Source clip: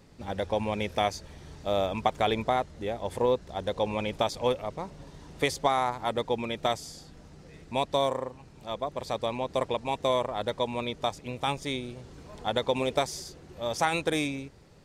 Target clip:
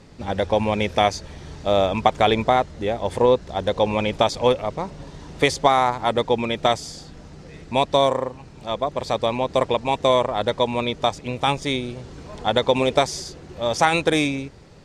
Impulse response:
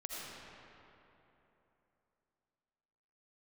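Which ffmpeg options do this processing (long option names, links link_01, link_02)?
-af "lowpass=8400,volume=8.5dB"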